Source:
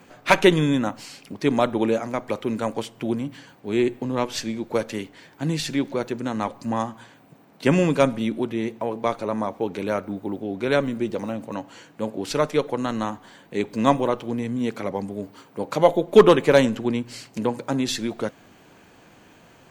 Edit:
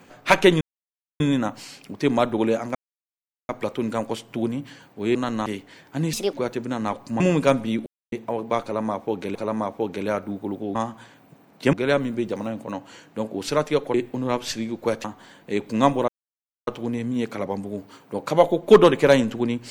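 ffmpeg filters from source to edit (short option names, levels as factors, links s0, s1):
-filter_complex "[0:a]asplit=16[s0][s1][s2][s3][s4][s5][s6][s7][s8][s9][s10][s11][s12][s13][s14][s15];[s0]atrim=end=0.61,asetpts=PTS-STARTPTS,afade=t=out:st=0.606:d=0.004:c=hsin,apad=pad_dur=0.59[s16];[s1]atrim=start=0.61:end=2.16,asetpts=PTS-STARTPTS,afade=t=in:d=0.004:c=hsin,afade=t=out:st=1.546:d=0.004:c=hsin,apad=pad_dur=0.74[s17];[s2]atrim=start=2.16:end=3.822,asetpts=PTS-STARTPTS,afade=t=in:d=0.004:c=hsin[s18];[s3]atrim=start=12.768:end=13.082[s19];[s4]atrim=start=4.918:end=5.594[s20];[s5]atrim=start=5.59:end=5.88,asetpts=PTS-STARTPTS,asetrate=63504,aresample=44100,atrim=end_sample=8881,asetpts=PTS-STARTPTS[s21];[s6]atrim=start=5.876:end=6.752[s22];[s7]atrim=start=7.728:end=8.39,asetpts=PTS-STARTPTS,afade=t=out:st=0.658:d=0.004:c=hsin[s23];[s8]atrim=start=8.39:end=8.65,asetpts=PTS-STARTPTS,volume=0[s24];[s9]atrim=start=8.65:end=9.882,asetpts=PTS-STARTPTS,afade=t=in:d=0.004:c=hsin[s25];[s10]atrim=start=9.158:end=10.562[s26];[s11]atrim=start=6.748:end=7.732[s27];[s12]atrim=start=10.558:end=12.772[s28];[s13]atrim=start=3.818:end=4.922[s29];[s14]atrim=start=13.078:end=14.12,asetpts=PTS-STARTPTS,afade=t=out:st=1.038:d=0.004:c=hsin,apad=pad_dur=0.59[s30];[s15]atrim=start=14.12,asetpts=PTS-STARTPTS,afade=t=in:d=0.004:c=hsin[s31];[s16][s17][s18]concat=n=3:v=0:a=1[s32];[s32][s19]acrossfade=d=0.004:c1=hsin:c2=hsin[s33];[s33][s20]acrossfade=d=0.004:c1=hsin:c2=hsin[s34];[s34][s21]acrossfade=d=0.004:c1=hsin:c2=hsin[s35];[s35][s22]acrossfade=d=0.004:c1=hsin:c2=hsin[s36];[s23][s24][s25]concat=n=3:v=0:a=1[s37];[s36][s37]acrossfade=d=0.004:c1=hsin:c2=hsin[s38];[s38][s26]acrossfade=d=0.004:c1=hsin:c2=hsin[s39];[s39][s27]acrossfade=d=0.004:c1=hsin:c2=hsin[s40];[s40][s28]acrossfade=d=0.004:c1=hsin:c2=hsin[s41];[s41][s29]acrossfade=d=0.004:c1=hsin:c2=hsin[s42];[s30][s31]concat=n=2:v=0:a=1[s43];[s42][s43]acrossfade=d=0.004:c1=hsin:c2=hsin"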